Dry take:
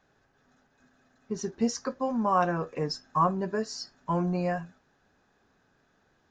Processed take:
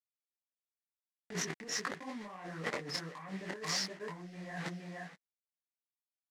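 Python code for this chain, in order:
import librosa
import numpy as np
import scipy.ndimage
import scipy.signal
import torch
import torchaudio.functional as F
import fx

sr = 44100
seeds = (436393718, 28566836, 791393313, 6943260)

y = fx.low_shelf(x, sr, hz=340.0, db=6.5)
y = y + 0.5 * np.pad(y, (int(6.7 * sr / 1000.0), 0))[:len(y)]
y = fx.quant_dither(y, sr, seeds[0], bits=6, dither='none')
y = 10.0 ** (-18.0 / 20.0) * np.tanh(y / 10.0 ** (-18.0 / 20.0))
y = fx.bandpass_edges(y, sr, low_hz=190.0, high_hz=6800.0)
y = y + 10.0 ** (-22.5 / 20.0) * np.pad(y, (int(470 * sr / 1000.0), 0))[:len(y)]
y = fx.over_compress(y, sr, threshold_db=-39.0, ratio=-1.0)
y = fx.peak_eq(y, sr, hz=1900.0, db=12.5, octaves=0.44)
y = fx.detune_double(y, sr, cents=53)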